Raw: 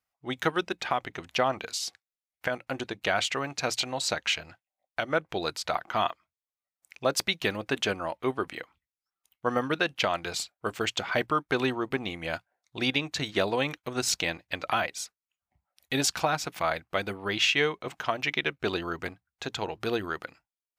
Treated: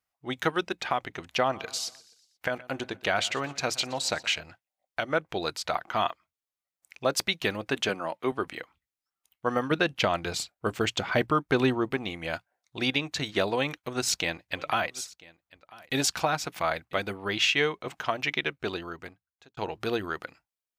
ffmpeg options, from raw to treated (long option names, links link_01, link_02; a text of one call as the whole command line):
ffmpeg -i in.wav -filter_complex "[0:a]asplit=3[link_01][link_02][link_03];[link_01]afade=type=out:start_time=1.54:duration=0.02[link_04];[link_02]aecho=1:1:121|242|363|484:0.1|0.053|0.0281|0.0149,afade=type=in:start_time=1.54:duration=0.02,afade=type=out:start_time=4.38:duration=0.02[link_05];[link_03]afade=type=in:start_time=4.38:duration=0.02[link_06];[link_04][link_05][link_06]amix=inputs=3:normalize=0,asettb=1/sr,asplit=3[link_07][link_08][link_09];[link_07]atrim=end=7.894[link_10];[link_08]atrim=start=7.89:end=8.32,asetpts=PTS-STARTPTS,afade=type=in:duration=0.004:curve=qsin,afade=type=out:start_time=0.426:duration=0.004:curve=qsin,highpass=frequency=130:width=0.5412,highpass=frequency=130:width=1.3066[link_11];[link_09]atrim=start=8.316[link_12];[link_10][link_11]acrossfade=duration=0.004:curve1=hsin:curve2=qsin[link_13];[link_13][link_12]acrossfade=duration=0.004:curve1=qsin:curve2=hsin,asettb=1/sr,asplit=3[link_14][link_15][link_16];[link_14]atrim=end=9.714[link_17];[link_15]atrim=start=9.71:end=11.9,asetpts=PTS-STARTPTS,afade=type=in:duration=0.004:curve=qsin,afade=type=out:start_time=2.186:duration=0.004:curve=qsin,lowshelf=frequency=380:gain=7[link_18];[link_16]atrim=start=11.896[link_19];[link_17][link_18]acrossfade=duration=0.004:curve1=hsin:curve2=qsin[link_20];[link_20][link_19]acrossfade=duration=0.004:curve1=qsin:curve2=hsin,asplit=3[link_21][link_22][link_23];[link_21]afade=type=out:start_time=14.55:duration=0.02[link_24];[link_22]aecho=1:1:994:0.075,afade=type=in:start_time=14.55:duration=0.02,afade=type=out:start_time=17.01:duration=0.02[link_25];[link_23]afade=type=in:start_time=17.01:duration=0.02[link_26];[link_24][link_25][link_26]amix=inputs=3:normalize=0,asplit=2[link_27][link_28];[link_27]atrim=end=19.57,asetpts=PTS-STARTPTS,afade=type=out:start_time=18.33:duration=1.24[link_29];[link_28]atrim=start=19.57,asetpts=PTS-STARTPTS,afade=type=in:duration=0.004:curve=hsin[link_30];[link_29][link_30]concat=n=2:v=0:a=1" out.wav